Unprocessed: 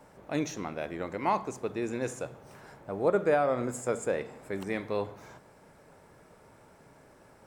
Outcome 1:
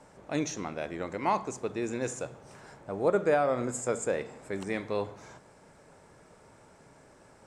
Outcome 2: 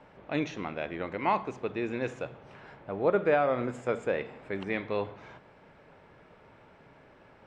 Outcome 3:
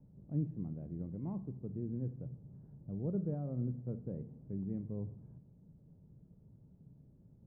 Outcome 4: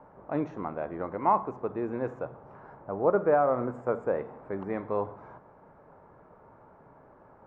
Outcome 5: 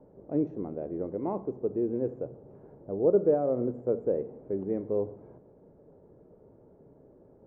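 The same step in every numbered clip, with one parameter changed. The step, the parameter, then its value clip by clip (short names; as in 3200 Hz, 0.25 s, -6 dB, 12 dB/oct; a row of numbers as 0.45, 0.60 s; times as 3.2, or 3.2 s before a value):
synth low-pass, frequency: 7900, 3000, 160, 1100, 430 Hz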